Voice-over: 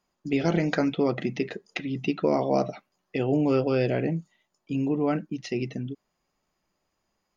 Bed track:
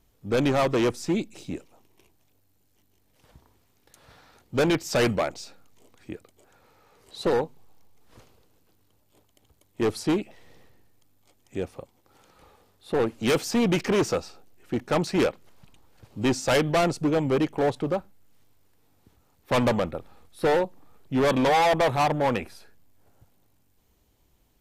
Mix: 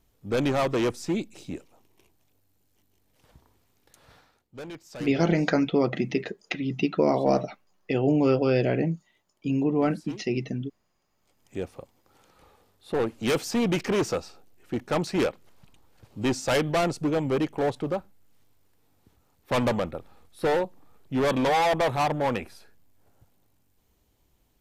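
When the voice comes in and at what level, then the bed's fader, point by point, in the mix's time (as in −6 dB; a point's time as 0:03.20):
4.75 s, +1.5 dB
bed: 0:04.17 −2 dB
0:04.48 −17.5 dB
0:11.04 −17.5 dB
0:11.45 −2 dB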